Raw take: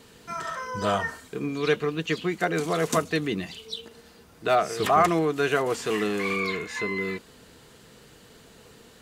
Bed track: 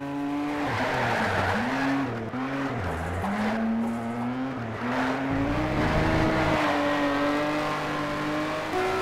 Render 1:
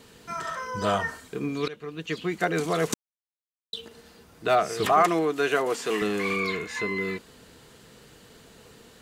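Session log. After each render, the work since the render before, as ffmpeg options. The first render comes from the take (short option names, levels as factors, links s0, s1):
-filter_complex "[0:a]asettb=1/sr,asplit=3[s0][s1][s2];[s0]atrim=end=4.924[s3];[s1]atrim=start=4.92:end=6.02,asetpts=PTS-STARTPTS,afade=t=in:d=0.004:c=qsin,afade=t=out:st=1.096:d=0.004:c=qsin,highpass=220[s4];[s2]atrim=start=6.016[s5];[s3][s4]acrossfade=d=0.004:c1=hsin:c2=qsin[s6];[s6][s5]acrossfade=d=0.004:c1=qsin:c2=hsin,asplit=4[s7][s8][s9][s10];[s7]atrim=end=1.68,asetpts=PTS-STARTPTS,afade=t=out:st=1.676:d=0.004:c=hsin:silence=0.0841395[s11];[s8]atrim=start=1.68:end=2.94,asetpts=PTS-STARTPTS,afade=t=in:d=0.73:silence=0.0841395,afade=t=out:st=1.256:d=0.004:c=hsin[s12];[s9]atrim=start=2.94:end=3.73,asetpts=PTS-STARTPTS,volume=0[s13];[s10]atrim=start=3.73,asetpts=PTS-STARTPTS,afade=t=in:d=0.004:c=hsin[s14];[s11][s12][s13][s14]concat=n=4:v=0:a=1"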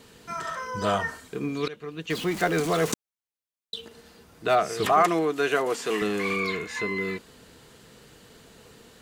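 -filter_complex "[0:a]asettb=1/sr,asplit=3[s0][s1][s2];[s0]atrim=end=2.104[s3];[s1]atrim=start=2.1:end=2.92,asetpts=PTS-STARTPTS,afade=t=in:d=0.004:c=qsin,afade=t=out:st=0.816:d=0.004:c=qsin,aeval=exprs='val(0)+0.5*0.0266*sgn(val(0))':c=same[s4];[s2]atrim=start=2.916[s5];[s3][s4]acrossfade=d=0.004:c1=hsin:c2=qsin[s6];[s6][s5]acrossfade=d=0.004:c1=qsin:c2=hsin"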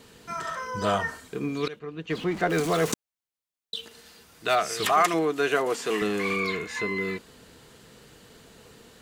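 -filter_complex "[0:a]asettb=1/sr,asplit=3[s0][s1][s2];[s0]atrim=end=1.794[s3];[s1]atrim=start=1.79:end=2.5,asetpts=PTS-STARTPTS,afade=t=in:d=0.004:c=qsin,afade=t=out:st=0.706:d=0.004:c=qsin,aemphasis=mode=reproduction:type=75kf[s4];[s2]atrim=start=2.496[s5];[s3][s4]acrossfade=d=0.004:c1=hsin:c2=qsin[s6];[s6][s5]acrossfade=d=0.004:c1=qsin:c2=hsin,asettb=1/sr,asplit=3[s7][s8][s9];[s7]atrim=end=3.754[s10];[s8]atrim=start=3.75:end=5.14,asetpts=PTS-STARTPTS,afade=t=in:d=0.004:c=qsin,afade=t=out:st=1.386:d=0.004:c=qsin,tiltshelf=f=1200:g=-5.5[s11];[s9]atrim=start=5.136[s12];[s10][s11]acrossfade=d=0.004:c1=hsin:c2=qsin[s13];[s13][s12]acrossfade=d=0.004:c1=qsin:c2=hsin"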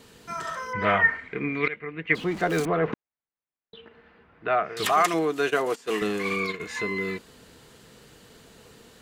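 -filter_complex "[0:a]asettb=1/sr,asplit=3[s0][s1][s2];[s0]atrim=end=0.734[s3];[s1]atrim=start=0.73:end=2.15,asetpts=PTS-STARTPTS,afade=t=in:d=0.004:c=qsin,afade=t=out:st=1.416:d=0.004:c=qsin,lowpass=f=2100:t=q:w=11[s4];[s2]atrim=start=2.146[s5];[s3][s4]acrossfade=d=0.004:c1=hsin:c2=qsin[s6];[s6][s5]acrossfade=d=0.004:c1=qsin:c2=hsin,asettb=1/sr,asplit=3[s7][s8][s9];[s7]atrim=end=2.654[s10];[s8]atrim=start=2.65:end=4.77,asetpts=PTS-STARTPTS,afade=t=in:d=0.004:c=qsin,afade=t=out:st=2.116:d=0.004:c=qsin,lowpass=f=2200:w=0.5412,lowpass=f=2200:w=1.3066[s11];[s9]atrim=start=4.766[s12];[s10][s11]acrossfade=d=0.004:c1=hsin:c2=qsin[s13];[s13][s12]acrossfade=d=0.004:c1=qsin:c2=hsin,asplit=3[s14][s15][s16];[s14]afade=t=out:st=5.49:d=0.02[s17];[s15]agate=range=0.178:threshold=0.0355:ratio=16:release=100:detection=peak,afade=t=in:st=5.49:d=0.02,afade=t=out:st=6.59:d=0.02[s18];[s16]afade=t=in:st=6.59:d=0.02[s19];[s17][s18][s19]amix=inputs=3:normalize=0"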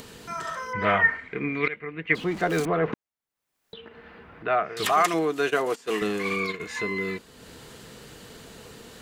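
-af "acompressor=mode=upward:threshold=0.0141:ratio=2.5"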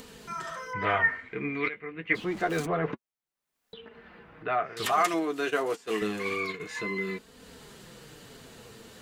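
-af "flanger=delay=3.9:depth=6.9:regen=-32:speed=0.27:shape=triangular"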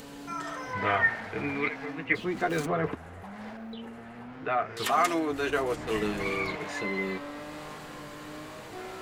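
-filter_complex "[1:a]volume=0.178[s0];[0:a][s0]amix=inputs=2:normalize=0"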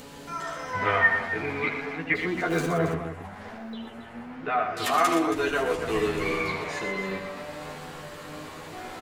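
-filter_complex "[0:a]asplit=2[s0][s1];[s1]adelay=12,volume=0.708[s2];[s0][s2]amix=inputs=2:normalize=0,aecho=1:1:75.8|119.5|274.1:0.282|0.398|0.282"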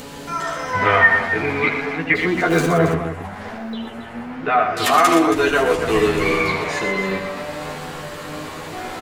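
-af "volume=2.82,alimiter=limit=0.708:level=0:latency=1"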